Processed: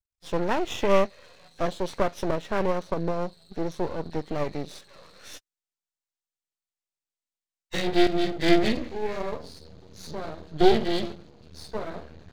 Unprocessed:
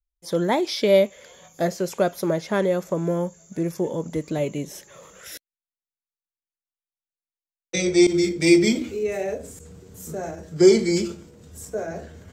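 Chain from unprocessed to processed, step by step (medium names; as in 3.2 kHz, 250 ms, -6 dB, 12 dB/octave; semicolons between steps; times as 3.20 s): knee-point frequency compression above 1.5 kHz 1.5:1; half-wave rectifier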